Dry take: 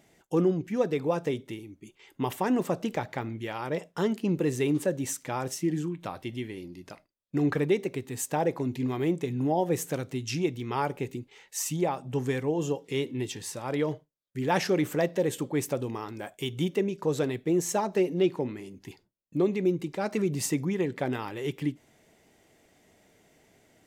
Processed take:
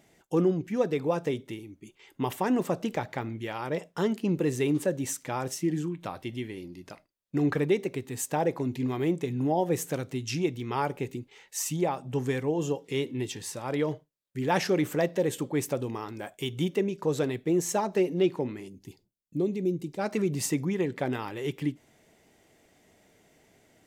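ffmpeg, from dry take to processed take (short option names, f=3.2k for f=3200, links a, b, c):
-filter_complex "[0:a]asettb=1/sr,asplit=3[a][b][c];[a]atrim=end=18.684[d];[b]atrim=start=18.68:end=19.99,asetpts=PTS-STARTPTS,afade=t=in:d=0.004:c=qsin,afade=t=out:st=1.306:d=0.004:c=qsin,equalizer=f=1.4k:w=0.61:g=-14[e];[c]atrim=start=19.986[f];[d][e]acrossfade=d=0.004:c1=hsin:c2=qsin[g];[g][f]acrossfade=d=0.004:c1=qsin:c2=hsin"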